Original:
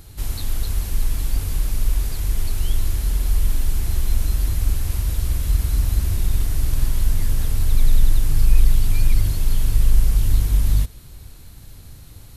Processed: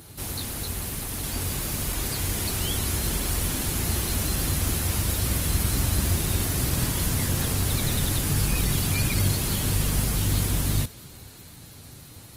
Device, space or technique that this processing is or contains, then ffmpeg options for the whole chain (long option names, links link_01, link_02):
video call: -af "highpass=130,dynaudnorm=framelen=210:gausssize=17:maxgain=3.5dB,volume=3.5dB" -ar 48000 -c:a libopus -b:a 20k